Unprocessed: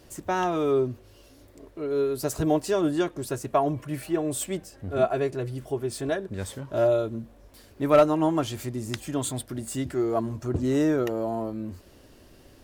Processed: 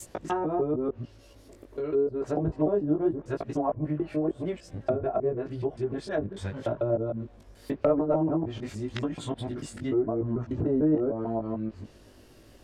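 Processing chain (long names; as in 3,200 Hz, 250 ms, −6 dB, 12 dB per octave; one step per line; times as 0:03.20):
reversed piece by piece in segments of 148 ms
chorus effect 0.87 Hz, delay 17.5 ms, depth 2.4 ms
treble cut that deepens with the level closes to 650 Hz, closed at −24.5 dBFS
level +2 dB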